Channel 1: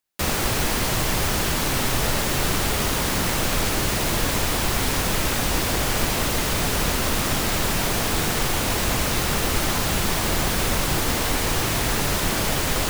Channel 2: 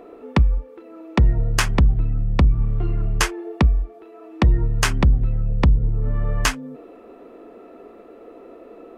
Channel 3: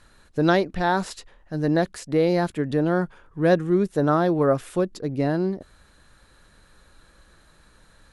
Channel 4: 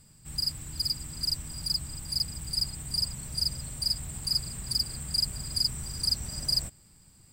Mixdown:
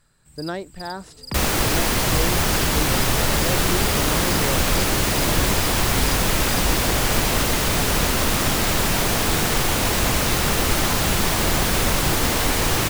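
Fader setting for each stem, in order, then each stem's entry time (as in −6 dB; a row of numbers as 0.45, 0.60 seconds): +2.5, −13.5, −10.0, −10.0 decibels; 1.15, 0.95, 0.00, 0.00 seconds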